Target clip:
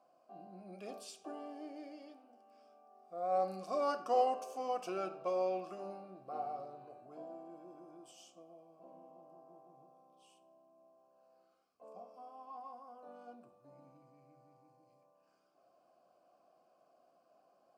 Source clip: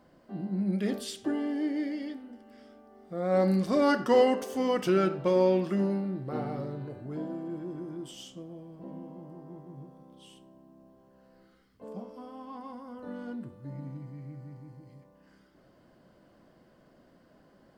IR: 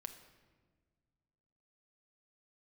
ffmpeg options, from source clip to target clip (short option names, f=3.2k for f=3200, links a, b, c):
-filter_complex "[0:a]aexciter=amount=8.2:drive=3.3:freq=4.8k,asplit=3[a][b][c];[a]bandpass=f=730:t=q:w=8,volume=0dB[d];[b]bandpass=f=1.09k:t=q:w=8,volume=-6dB[e];[c]bandpass=f=2.44k:t=q:w=8,volume=-9dB[f];[d][e][f]amix=inputs=3:normalize=0,bandreject=f=50:t=h:w=6,bandreject=f=100:t=h:w=6,bandreject=f=150:t=h:w=6,bandreject=f=200:t=h:w=6,asplit=2[g][h];[1:a]atrim=start_sample=2205[i];[h][i]afir=irnorm=-1:irlink=0,volume=-6dB[j];[g][j]amix=inputs=2:normalize=0"